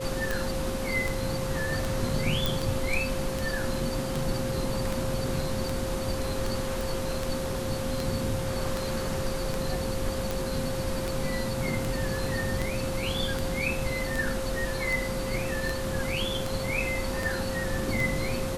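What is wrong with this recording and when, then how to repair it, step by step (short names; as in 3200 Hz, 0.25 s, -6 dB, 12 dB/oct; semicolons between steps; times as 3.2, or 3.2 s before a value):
tick 78 rpm
tone 530 Hz -33 dBFS
2.46 pop
6.81 pop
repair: de-click; notch 530 Hz, Q 30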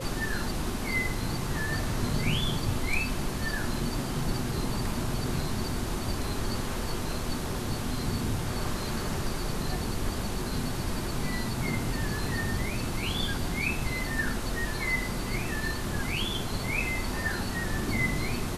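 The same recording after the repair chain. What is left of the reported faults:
none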